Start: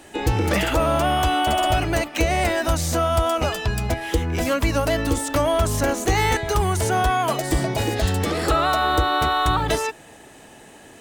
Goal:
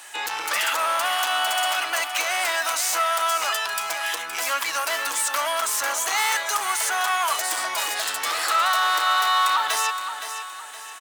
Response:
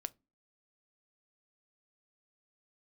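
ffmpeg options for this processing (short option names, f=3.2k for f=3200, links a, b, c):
-filter_complex "[0:a]highshelf=f=3k:g=9.5,asoftclip=type=tanh:threshold=-18.5dB,highpass=f=1.1k:t=q:w=1.7,asplit=2[a][b];[b]aecho=0:1:518|1036|1554|2072:0.335|0.134|0.0536|0.0214[c];[a][c]amix=inputs=2:normalize=0"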